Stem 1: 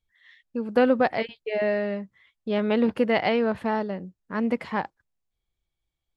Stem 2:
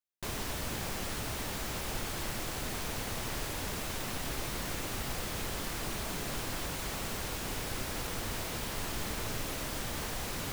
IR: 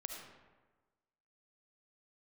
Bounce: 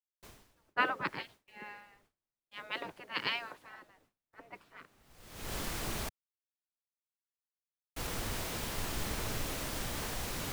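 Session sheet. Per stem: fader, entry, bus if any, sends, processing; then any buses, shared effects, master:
-6.5 dB, 0.00 s, no send, spectral gate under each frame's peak -15 dB weak; three-band expander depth 70%
-1.0 dB, 0.00 s, muted 6.09–7.96, no send, auto duck -23 dB, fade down 0.45 s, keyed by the first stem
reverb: off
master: gate with hold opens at -46 dBFS; three-band expander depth 70%

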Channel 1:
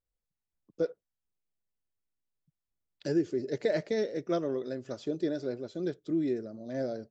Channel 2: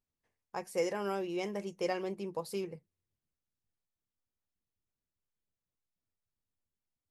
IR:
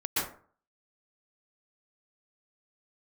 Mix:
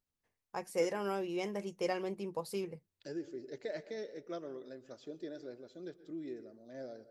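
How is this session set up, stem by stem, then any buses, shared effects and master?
-10.5 dB, 0.00 s, send -23.5 dB, low shelf 250 Hz -9 dB
-1.0 dB, 0.00 s, no send, dry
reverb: on, RT60 0.45 s, pre-delay 0.113 s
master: dry

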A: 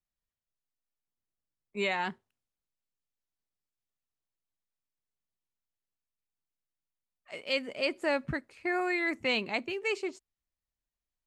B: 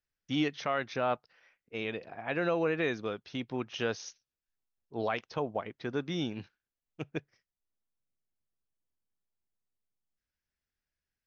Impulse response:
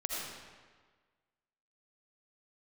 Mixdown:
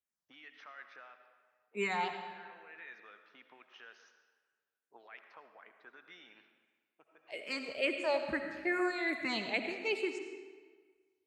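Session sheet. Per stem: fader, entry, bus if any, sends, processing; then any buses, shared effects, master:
-4.0 dB, 0.00 s, send -4 dB, low shelf 130 Hz -6 dB; endless phaser -2.3 Hz
-7.0 dB, 0.00 s, send -7.5 dB, HPF 220 Hz 12 dB/oct; limiter -29.5 dBFS, peak gain reduction 11.5 dB; auto-wah 720–1900 Hz, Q 2.3, up, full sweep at -35 dBFS; auto duck -14 dB, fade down 0.75 s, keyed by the first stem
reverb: on, RT60 1.5 s, pre-delay 40 ms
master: HPF 69 Hz

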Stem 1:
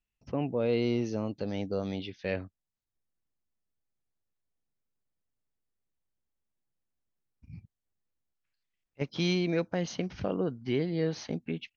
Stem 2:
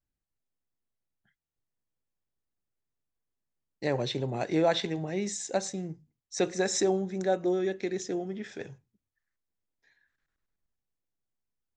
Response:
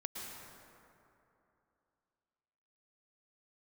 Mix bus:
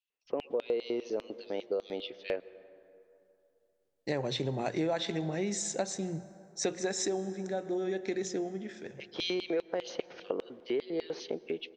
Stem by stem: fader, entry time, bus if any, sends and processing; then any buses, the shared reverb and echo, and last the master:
-1.0 dB, 0.00 s, send -16.5 dB, high shelf 5400 Hz -11.5 dB; LFO high-pass square 5 Hz 430–3300 Hz
+1.5 dB, 0.25 s, send -16.5 dB, notches 60/120/180 Hz; auto duck -10 dB, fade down 0.80 s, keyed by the first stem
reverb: on, RT60 2.9 s, pre-delay 0.103 s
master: compressor 4:1, threshold -29 dBFS, peak gain reduction 10 dB

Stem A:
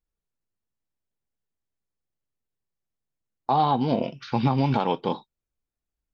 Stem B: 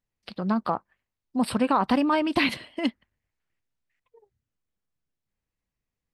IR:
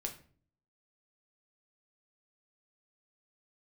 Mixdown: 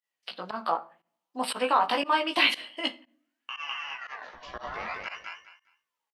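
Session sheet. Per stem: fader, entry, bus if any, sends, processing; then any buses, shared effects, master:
0.0 dB, 0.00 s, send -22.5 dB, echo send -3.5 dB, notches 60/120/180 Hz; compressor 6:1, threshold -27 dBFS, peak gain reduction 10 dB; ring modulator with a swept carrier 1400 Hz, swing 40%, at 0.57 Hz; auto duck -23 dB, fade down 0.55 s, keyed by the second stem
+0.5 dB, 0.00 s, send -3 dB, no echo send, HPF 610 Hz 12 dB/oct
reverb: on, RT60 0.45 s, pre-delay 6 ms
echo: feedback echo 0.204 s, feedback 21%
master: bell 3000 Hz +6.5 dB 0.28 oct; chorus 0.69 Hz, delay 15.5 ms, depth 2.9 ms; pump 118 bpm, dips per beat 1, -20 dB, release 80 ms

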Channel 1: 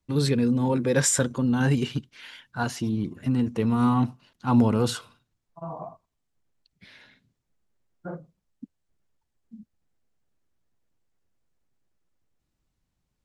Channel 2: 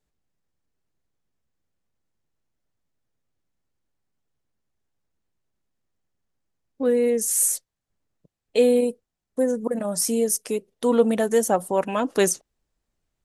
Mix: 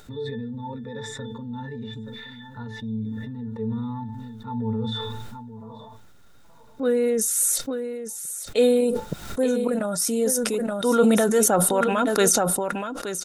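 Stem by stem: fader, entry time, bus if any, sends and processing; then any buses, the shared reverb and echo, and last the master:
+2.0 dB, 0.00 s, no send, echo send -23.5 dB, tilt +1.5 dB/oct; octave resonator A, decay 0.22 s; auto duck -13 dB, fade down 1.20 s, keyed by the second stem
-1.5 dB, 0.00 s, no send, echo send -11.5 dB, dry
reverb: off
echo: echo 0.874 s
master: upward compressor, threshold -30 dBFS; small resonant body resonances 1400/3700 Hz, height 15 dB, ringing for 35 ms; sustainer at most 21 dB/s

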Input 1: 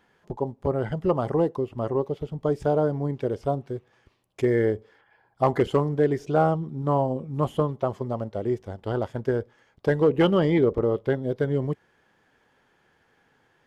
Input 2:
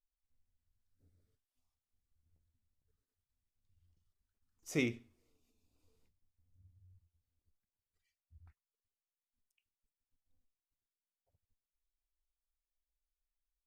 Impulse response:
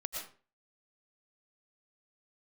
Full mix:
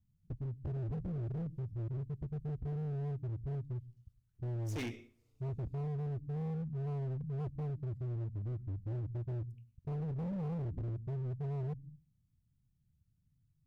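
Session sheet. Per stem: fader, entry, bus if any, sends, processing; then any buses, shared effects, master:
+0.5 dB, 0.00 s, send -7.5 dB, inverse Chebyshev low-pass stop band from 620 Hz, stop band 70 dB
-2.5 dB, 0.00 s, send -15 dB, dry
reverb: on, RT60 0.40 s, pre-delay 75 ms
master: hard clip -36 dBFS, distortion -8 dB

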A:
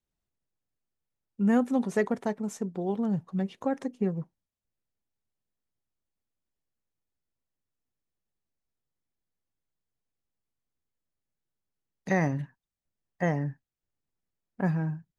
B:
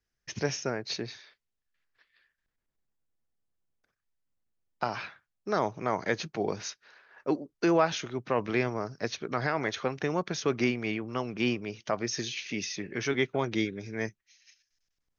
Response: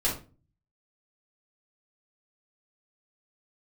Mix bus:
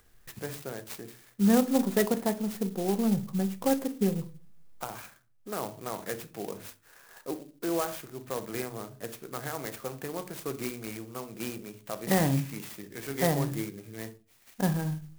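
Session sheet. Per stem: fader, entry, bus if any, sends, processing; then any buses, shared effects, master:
0.0 dB, 0.00 s, send -17 dB, dry
-8.5 dB, 0.00 s, send -15 dB, upward compressor, threshold -35 dBFS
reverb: on, RT60 0.35 s, pre-delay 3 ms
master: clock jitter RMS 0.078 ms

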